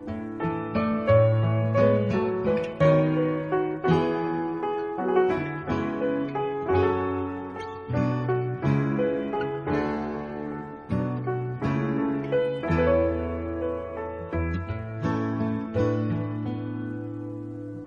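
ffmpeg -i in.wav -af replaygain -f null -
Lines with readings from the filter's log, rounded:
track_gain = +6.4 dB
track_peak = 0.276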